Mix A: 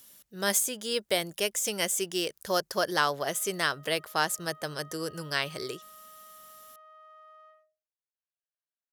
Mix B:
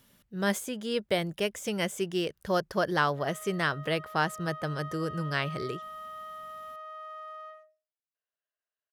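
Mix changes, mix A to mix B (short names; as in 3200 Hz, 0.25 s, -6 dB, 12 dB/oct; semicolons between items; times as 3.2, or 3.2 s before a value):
speech: add tone controls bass +10 dB, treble -13 dB; background +10.5 dB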